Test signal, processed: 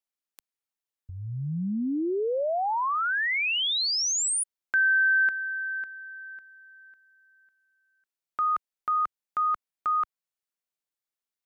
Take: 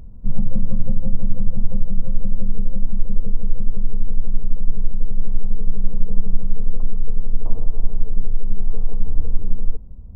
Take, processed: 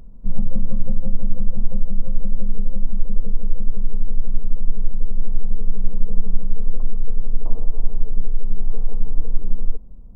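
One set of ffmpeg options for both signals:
-af "equalizer=f=81:w=1.3:g=-13.5"

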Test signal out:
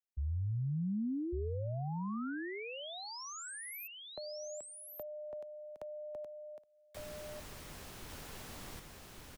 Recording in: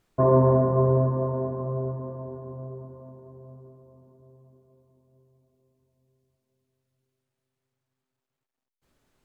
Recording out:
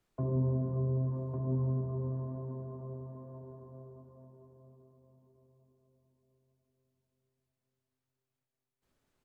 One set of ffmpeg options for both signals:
-filter_complex "[0:a]acrossover=split=140|310[s0][s1][s2];[s2]acompressor=threshold=0.0126:ratio=12[s3];[s0][s1][s3]amix=inputs=3:normalize=0,aecho=1:1:1153:0.668,volume=0.398"

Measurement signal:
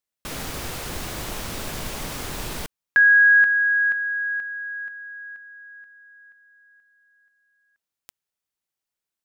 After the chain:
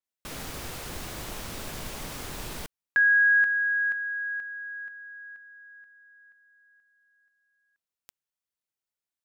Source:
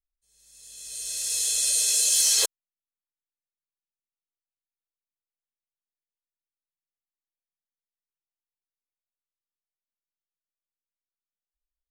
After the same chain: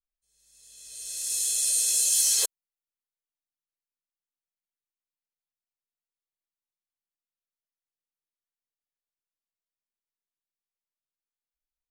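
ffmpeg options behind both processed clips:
-af "adynamicequalizer=threshold=0.0178:dfrequency=6500:dqfactor=0.7:tfrequency=6500:tqfactor=0.7:attack=5:release=100:ratio=0.375:range=3.5:mode=boostabove:tftype=highshelf,volume=0.501"

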